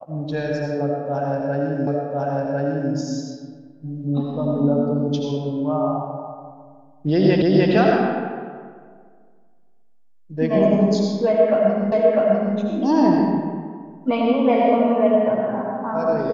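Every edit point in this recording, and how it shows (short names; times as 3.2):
1.87 repeat of the last 1.05 s
7.42 repeat of the last 0.3 s
11.92 repeat of the last 0.65 s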